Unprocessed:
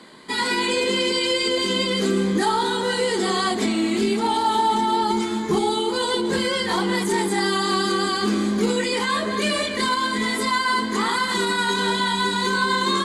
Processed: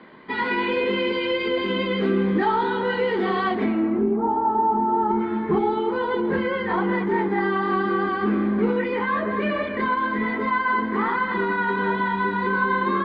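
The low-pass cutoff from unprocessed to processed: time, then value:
low-pass 24 dB/octave
3.54 s 2.6 kHz
4.10 s 1.1 kHz
4.86 s 1.1 kHz
5.36 s 2.1 kHz

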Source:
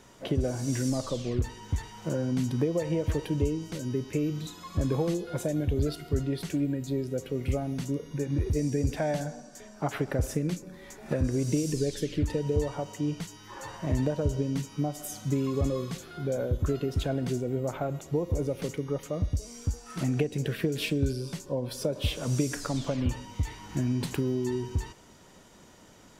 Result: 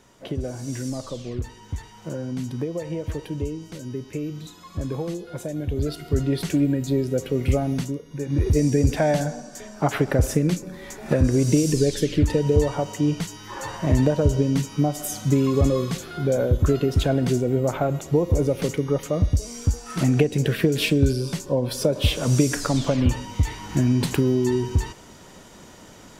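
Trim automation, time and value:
5.50 s -1 dB
6.36 s +8 dB
7.78 s +8 dB
8.04 s -3 dB
8.46 s +8.5 dB

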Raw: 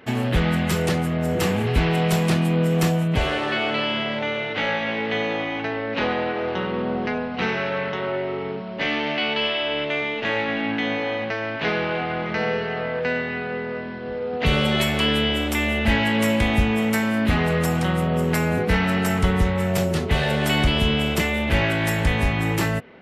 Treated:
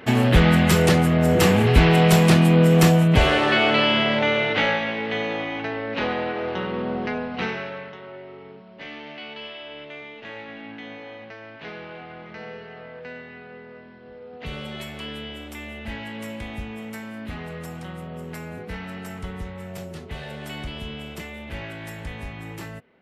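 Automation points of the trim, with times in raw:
4.52 s +5 dB
4.94 s -2 dB
7.39 s -2 dB
8.00 s -14 dB

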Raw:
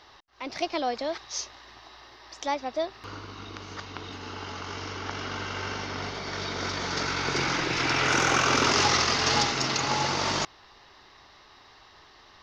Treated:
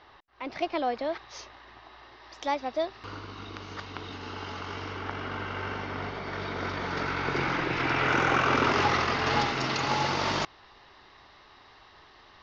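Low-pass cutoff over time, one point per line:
1.91 s 2.8 kHz
2.54 s 4.6 kHz
4.48 s 4.6 kHz
5.18 s 2.5 kHz
9.23 s 2.5 kHz
9.89 s 4.1 kHz

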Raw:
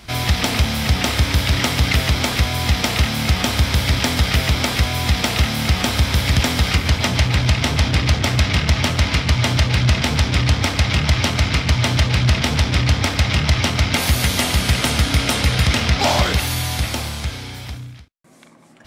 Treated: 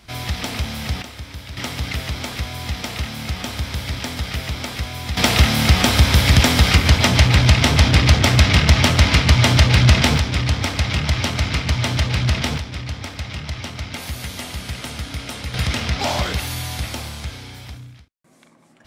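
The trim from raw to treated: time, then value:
-7 dB
from 1.02 s -17 dB
from 1.57 s -8.5 dB
from 5.17 s +3.5 dB
from 10.18 s -3 dB
from 12.58 s -12 dB
from 15.54 s -5 dB

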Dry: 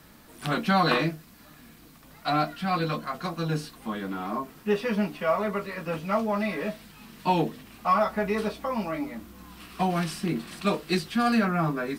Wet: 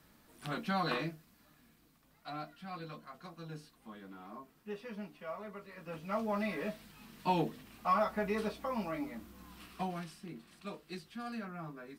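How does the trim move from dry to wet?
0.99 s -11.5 dB
2.31 s -18 dB
5.60 s -18 dB
6.32 s -7.5 dB
9.64 s -7.5 dB
10.17 s -19 dB

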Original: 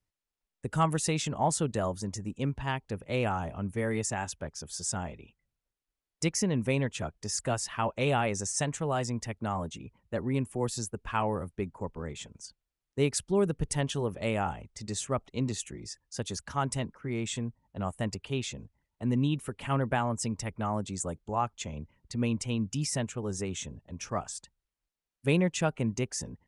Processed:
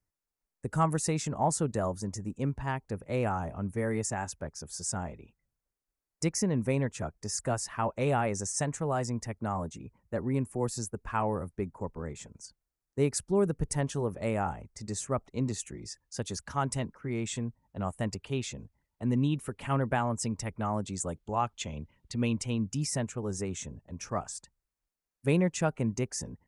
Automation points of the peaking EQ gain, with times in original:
peaking EQ 3.2 kHz
15.26 s -11.5 dB
15.88 s -4 dB
20.66 s -4 dB
21.37 s +3 dB
22.26 s +3 dB
22.69 s -7.5 dB

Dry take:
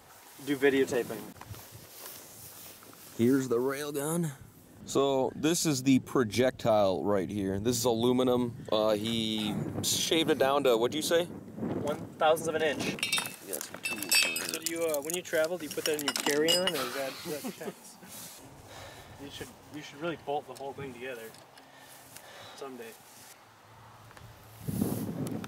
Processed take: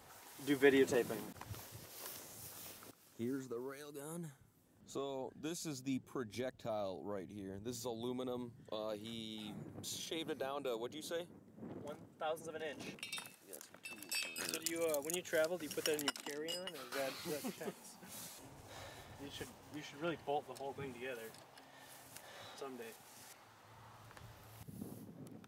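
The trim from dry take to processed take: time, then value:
-4.5 dB
from 2.91 s -16 dB
from 14.38 s -7 dB
from 16.10 s -17.5 dB
from 16.92 s -6 dB
from 24.63 s -18.5 dB

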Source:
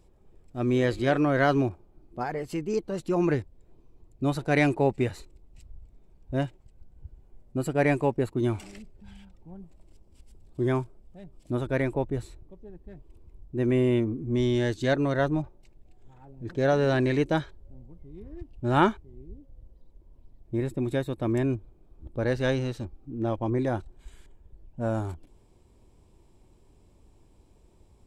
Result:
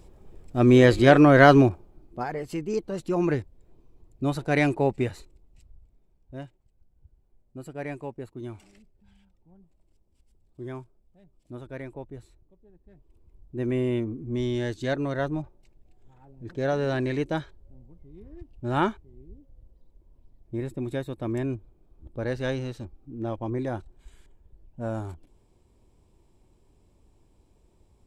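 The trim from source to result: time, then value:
1.54 s +8.5 dB
2.25 s 0 dB
5.01 s 0 dB
6.40 s -11.5 dB
12.67 s -11.5 dB
13.59 s -3 dB

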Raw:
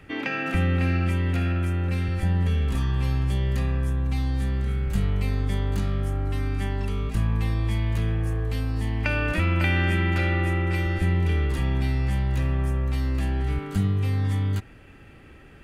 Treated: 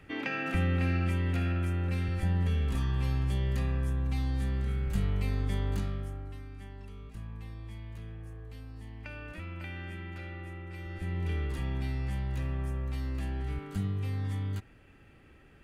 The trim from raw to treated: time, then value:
5.74 s -5.5 dB
6.47 s -18.5 dB
10.71 s -18.5 dB
11.29 s -9 dB

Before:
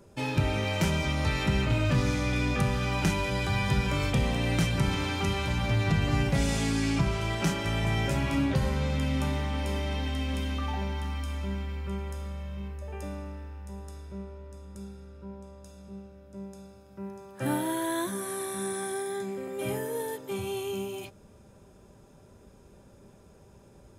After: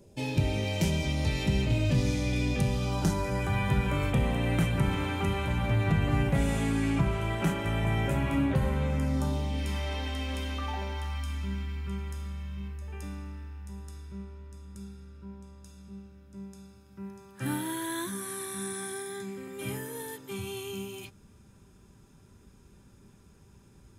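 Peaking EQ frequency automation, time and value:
peaking EQ -14 dB 0.97 oct
2.66 s 1.3 kHz
3.59 s 5.1 kHz
8.84 s 5.1 kHz
9.56 s 1.3 kHz
9.93 s 150 Hz
10.93 s 150 Hz
11.34 s 590 Hz

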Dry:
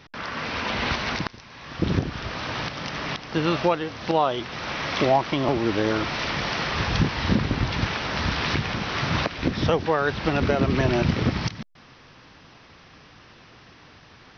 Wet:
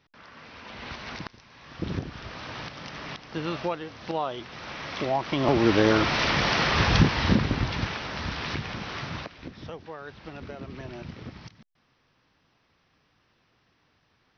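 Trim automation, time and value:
0.58 s -17 dB
1.32 s -8 dB
5.08 s -8 dB
5.61 s +3 dB
6.96 s +3 dB
8.17 s -7 dB
8.91 s -7 dB
9.55 s -18 dB

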